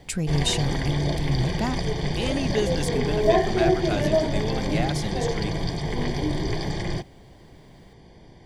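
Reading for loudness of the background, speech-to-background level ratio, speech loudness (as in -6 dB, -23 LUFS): -26.0 LUFS, -3.0 dB, -29.0 LUFS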